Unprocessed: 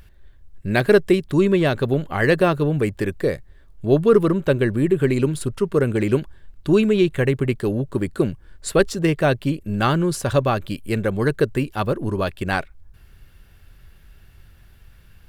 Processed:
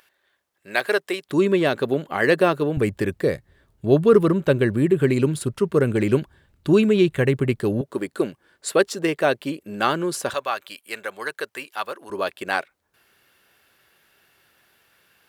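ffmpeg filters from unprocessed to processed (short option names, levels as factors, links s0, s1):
-af "asetnsamples=n=441:p=0,asendcmd='1.29 highpass f 230;2.77 highpass f 85;7.81 highpass f 320;10.34 highpass f 900;12.1 highpass f 410',highpass=660"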